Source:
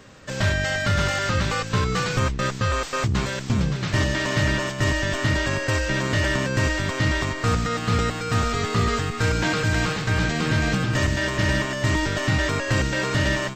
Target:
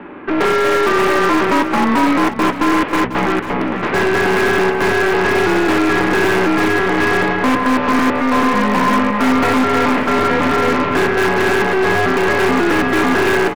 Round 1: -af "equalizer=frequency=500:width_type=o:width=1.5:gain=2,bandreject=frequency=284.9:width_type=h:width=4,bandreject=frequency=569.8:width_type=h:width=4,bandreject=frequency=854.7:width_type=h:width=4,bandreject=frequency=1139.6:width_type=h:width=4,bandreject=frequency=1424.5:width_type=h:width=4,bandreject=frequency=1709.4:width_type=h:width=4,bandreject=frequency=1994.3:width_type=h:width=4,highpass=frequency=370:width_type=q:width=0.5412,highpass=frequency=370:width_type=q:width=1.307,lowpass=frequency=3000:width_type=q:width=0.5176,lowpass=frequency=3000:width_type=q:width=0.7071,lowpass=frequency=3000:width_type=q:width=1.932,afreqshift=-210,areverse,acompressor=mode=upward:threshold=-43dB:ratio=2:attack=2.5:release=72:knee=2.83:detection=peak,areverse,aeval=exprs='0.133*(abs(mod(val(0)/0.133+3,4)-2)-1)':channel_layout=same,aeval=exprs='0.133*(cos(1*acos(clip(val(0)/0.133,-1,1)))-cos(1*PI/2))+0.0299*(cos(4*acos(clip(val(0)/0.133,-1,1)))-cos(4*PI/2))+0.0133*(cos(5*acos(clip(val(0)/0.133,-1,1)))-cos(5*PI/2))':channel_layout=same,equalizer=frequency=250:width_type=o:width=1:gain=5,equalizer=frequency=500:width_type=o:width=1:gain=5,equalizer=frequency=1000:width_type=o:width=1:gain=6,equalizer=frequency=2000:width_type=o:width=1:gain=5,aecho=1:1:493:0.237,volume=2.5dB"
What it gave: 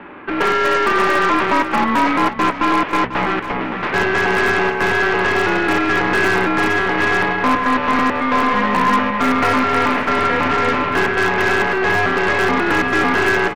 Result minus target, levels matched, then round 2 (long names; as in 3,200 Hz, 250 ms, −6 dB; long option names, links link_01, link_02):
500 Hz band −2.5 dB
-af "equalizer=frequency=500:width_type=o:width=1.5:gain=9,bandreject=frequency=284.9:width_type=h:width=4,bandreject=frequency=569.8:width_type=h:width=4,bandreject=frequency=854.7:width_type=h:width=4,bandreject=frequency=1139.6:width_type=h:width=4,bandreject=frequency=1424.5:width_type=h:width=4,bandreject=frequency=1709.4:width_type=h:width=4,bandreject=frequency=1994.3:width_type=h:width=4,highpass=frequency=370:width_type=q:width=0.5412,highpass=frequency=370:width_type=q:width=1.307,lowpass=frequency=3000:width_type=q:width=0.5176,lowpass=frequency=3000:width_type=q:width=0.7071,lowpass=frequency=3000:width_type=q:width=1.932,afreqshift=-210,areverse,acompressor=mode=upward:threshold=-43dB:ratio=2:attack=2.5:release=72:knee=2.83:detection=peak,areverse,aeval=exprs='0.133*(abs(mod(val(0)/0.133+3,4)-2)-1)':channel_layout=same,aeval=exprs='0.133*(cos(1*acos(clip(val(0)/0.133,-1,1)))-cos(1*PI/2))+0.0299*(cos(4*acos(clip(val(0)/0.133,-1,1)))-cos(4*PI/2))+0.0133*(cos(5*acos(clip(val(0)/0.133,-1,1)))-cos(5*PI/2))':channel_layout=same,equalizer=frequency=250:width_type=o:width=1:gain=5,equalizer=frequency=500:width_type=o:width=1:gain=5,equalizer=frequency=1000:width_type=o:width=1:gain=6,equalizer=frequency=2000:width_type=o:width=1:gain=5,aecho=1:1:493:0.237,volume=2.5dB"